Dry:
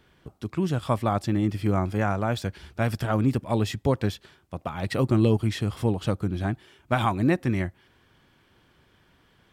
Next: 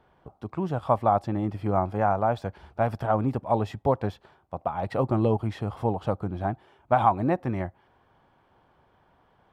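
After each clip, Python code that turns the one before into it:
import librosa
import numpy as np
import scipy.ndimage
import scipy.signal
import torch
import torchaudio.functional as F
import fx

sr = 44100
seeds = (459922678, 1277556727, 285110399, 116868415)

y = fx.curve_eq(x, sr, hz=(340.0, 800.0, 1800.0, 7200.0), db=(0, 12, -3, -12))
y = y * 10.0 ** (-4.0 / 20.0)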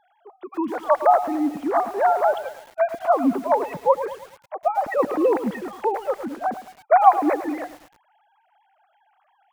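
y = fx.sine_speech(x, sr)
y = fx.echo_crushed(y, sr, ms=108, feedback_pct=55, bits=7, wet_db=-12)
y = y * 10.0 ** (4.5 / 20.0)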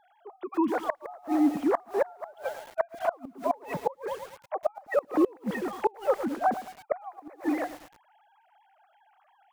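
y = fx.gate_flip(x, sr, shuts_db=-13.0, range_db=-29)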